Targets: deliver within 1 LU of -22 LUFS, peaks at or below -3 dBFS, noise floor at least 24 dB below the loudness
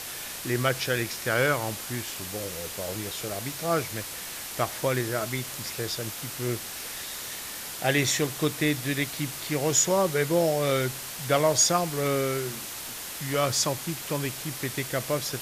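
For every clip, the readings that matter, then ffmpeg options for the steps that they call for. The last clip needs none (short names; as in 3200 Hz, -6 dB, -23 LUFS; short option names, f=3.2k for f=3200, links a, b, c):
noise floor -38 dBFS; noise floor target -52 dBFS; loudness -27.5 LUFS; peak -10.0 dBFS; loudness target -22.0 LUFS
-> -af "afftdn=nr=14:nf=-38"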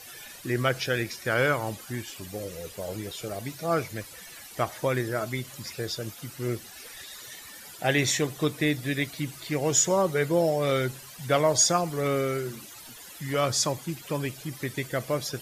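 noise floor -46 dBFS; noise floor target -52 dBFS
-> -af "afftdn=nr=6:nf=-46"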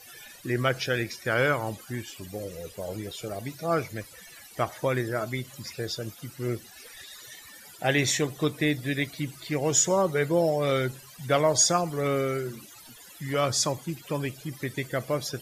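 noise floor -49 dBFS; noise floor target -52 dBFS
-> -af "afftdn=nr=6:nf=-49"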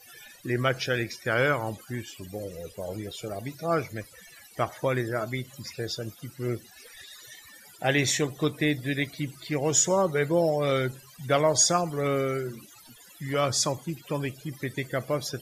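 noise floor -52 dBFS; loudness -27.5 LUFS; peak -10.0 dBFS; loudness target -22.0 LUFS
-> -af "volume=5.5dB"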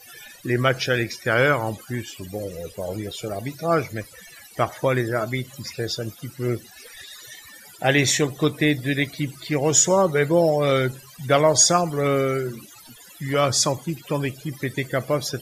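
loudness -22.0 LUFS; peak -4.5 dBFS; noise floor -47 dBFS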